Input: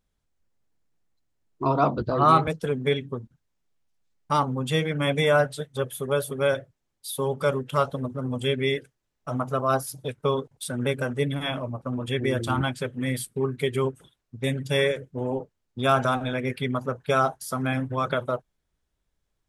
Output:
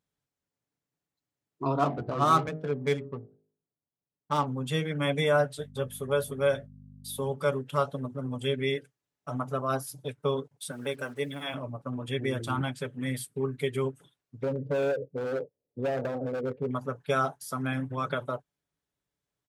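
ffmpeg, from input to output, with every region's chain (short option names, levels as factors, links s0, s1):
-filter_complex "[0:a]asettb=1/sr,asplit=3[s0][s1][s2];[s0]atrim=end=1.794[s3];[s1]atrim=start=1.79:end=4.46,asetpts=PTS-STARTPTS,afade=t=in:d=0.004:c=qsin,afade=t=out:st=2.666:d=0.004:c=qsin,bandreject=f=51.97:t=h:w=4,bandreject=f=103.94:t=h:w=4,bandreject=f=155.91:t=h:w=4,bandreject=f=207.88:t=h:w=4,bandreject=f=259.85:t=h:w=4,bandreject=f=311.82:t=h:w=4,bandreject=f=363.79:t=h:w=4,bandreject=f=415.76:t=h:w=4,bandreject=f=467.73:t=h:w=4,bandreject=f=519.7:t=h:w=4,bandreject=f=571.67:t=h:w=4,bandreject=f=623.64:t=h:w=4,bandreject=f=675.61:t=h:w=4,bandreject=f=727.58:t=h:w=4,bandreject=f=779.55:t=h:w=4,bandreject=f=831.52:t=h:w=4,adynamicsmooth=sensitivity=3.5:basefreq=930[s4];[s2]atrim=start=4.456[s5];[s3][s4]acrossfade=d=0.004:c1=hsin:c2=qsin[s6];[s6][s5]acrossfade=d=0.004:c1=qsin:c2=hsin,asettb=1/sr,asplit=3[s7][s8][s9];[s7]atrim=end=5.584[s10];[s8]atrim=start=5.58:end=7.32,asetpts=PTS-STARTPTS,afade=t=in:d=0.004:c=qsin,afade=t=out:st=1.736:d=0.004:c=qsin,agate=range=0.0224:threshold=0.00447:ratio=3:release=100:detection=peak,asplit=2[s11][s12];[s12]adelay=16,volume=0.237[s13];[s11][s13]amix=inputs=2:normalize=0,atrim=end_sample=76734,aeval=exprs='val(0)+0.0126*(sin(2*PI*50*n/s)+sin(2*PI*2*50*n/s)/2+sin(2*PI*3*50*n/s)/3+sin(2*PI*4*50*n/s)/4+sin(2*PI*5*50*n/s)/5)':c=same[s14];[s9]atrim=start=7.316[s15];[s10][s14]acrossfade=d=0.004:c1=hsin:c2=qsin[s16];[s16][s15]acrossfade=d=0.004:c1=qsin:c2=hsin,asettb=1/sr,asplit=3[s17][s18][s19];[s17]atrim=end=10.714[s20];[s18]atrim=start=10.71:end=11.54,asetpts=PTS-STARTPTS,afade=t=in:d=0.004:c=qsin,afade=t=out:st=0.826:d=0.004:c=qsin,highpass=f=380:p=1,acrusher=bits=8:mix=0:aa=0.5[s21];[s19]atrim=start=11.536[s22];[s20][s21]acrossfade=d=0.004:c1=hsin:c2=qsin[s23];[s23][s22]acrossfade=d=0.004:c1=qsin:c2=hsin,asettb=1/sr,asplit=3[s24][s25][s26];[s24]atrim=end=14.434[s27];[s25]atrim=start=14.43:end=16.71,asetpts=PTS-STARTPTS,afade=t=in:d=0.004:c=qsin,afade=t=out:st=2.276:d=0.004:c=qsin,lowpass=f=510:t=q:w=6.1,asoftclip=type=hard:threshold=0.133,acompressor=threshold=0.0794:ratio=6:attack=3.2:release=140:knee=1:detection=peak[s28];[s26]atrim=start=16.706[s29];[s27][s28]acrossfade=d=0.004:c1=hsin:c2=qsin[s30];[s30][s29]acrossfade=d=0.004:c1=qsin:c2=hsin,highpass=98,aecho=1:1:7:0.34,volume=0.531"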